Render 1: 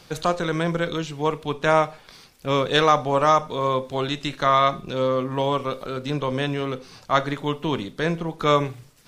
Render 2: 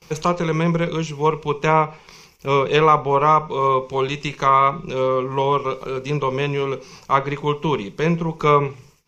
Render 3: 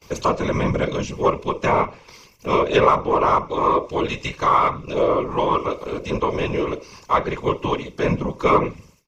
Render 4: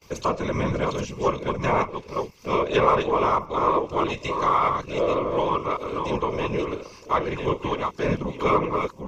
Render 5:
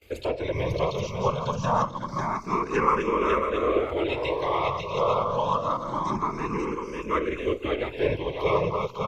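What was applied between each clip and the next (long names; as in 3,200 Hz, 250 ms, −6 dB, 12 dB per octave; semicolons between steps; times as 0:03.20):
noise gate with hold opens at −41 dBFS; treble cut that deepens with the level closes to 2,500 Hz, closed at −14.5 dBFS; EQ curve with evenly spaced ripples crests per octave 0.78, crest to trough 10 dB; level +2 dB
comb filter 1.9 ms, depth 47%; in parallel at −9.5 dB: soft clipping −16.5 dBFS, distortion −8 dB; on the sum: random phases in short frames; level −4 dB
delay that plays each chunk backwards 577 ms, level −5 dB; level −4.5 dB
single-tap delay 547 ms −4.5 dB; frequency shifter mixed with the dry sound +0.26 Hz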